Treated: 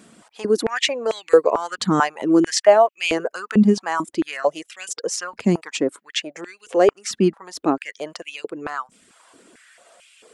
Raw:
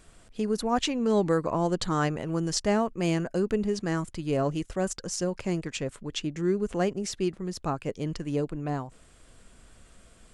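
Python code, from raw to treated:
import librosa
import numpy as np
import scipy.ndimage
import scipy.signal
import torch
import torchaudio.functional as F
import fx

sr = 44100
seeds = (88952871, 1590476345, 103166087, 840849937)

y = fx.dereverb_blind(x, sr, rt60_s=0.52)
y = fx.filter_held_highpass(y, sr, hz=4.5, low_hz=220.0, high_hz=2600.0)
y = F.gain(torch.from_numpy(y), 6.5).numpy()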